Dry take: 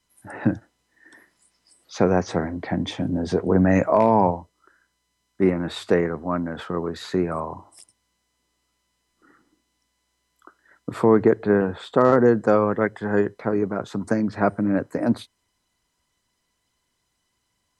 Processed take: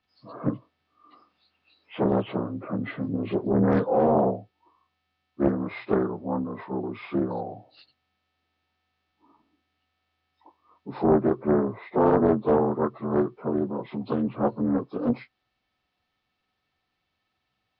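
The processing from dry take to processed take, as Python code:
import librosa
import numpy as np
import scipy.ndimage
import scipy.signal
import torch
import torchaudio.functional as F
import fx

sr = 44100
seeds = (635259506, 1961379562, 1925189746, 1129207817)

y = fx.partial_stretch(x, sr, pct=79)
y = fx.air_absorb(y, sr, metres=110.0)
y = fx.doppler_dist(y, sr, depth_ms=0.62)
y = y * librosa.db_to_amplitude(-2.0)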